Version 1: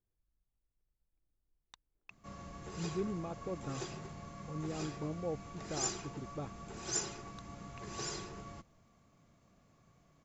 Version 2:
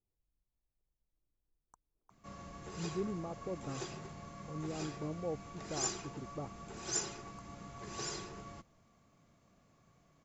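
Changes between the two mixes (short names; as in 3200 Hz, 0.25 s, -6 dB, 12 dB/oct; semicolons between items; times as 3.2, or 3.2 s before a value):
speech: add inverse Chebyshev band-stop 2100–4300 Hz, stop band 50 dB; master: add low shelf 150 Hz -3 dB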